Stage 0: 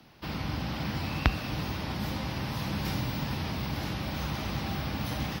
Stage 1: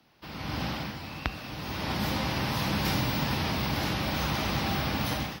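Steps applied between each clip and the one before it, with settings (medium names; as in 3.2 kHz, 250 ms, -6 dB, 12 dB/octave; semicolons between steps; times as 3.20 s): bass shelf 230 Hz -6 dB; level rider gain up to 13 dB; trim -6.5 dB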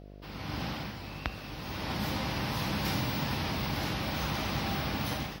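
mains buzz 50 Hz, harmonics 14, -45 dBFS -4 dB/octave; trim -3.5 dB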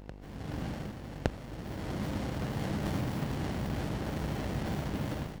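reverse echo 1164 ms -16.5 dB; sliding maximum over 33 samples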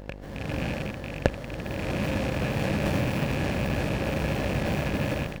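rattle on loud lows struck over -38 dBFS, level -31 dBFS; small resonant body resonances 550/1700 Hz, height 8 dB, ringing for 30 ms; trim +6 dB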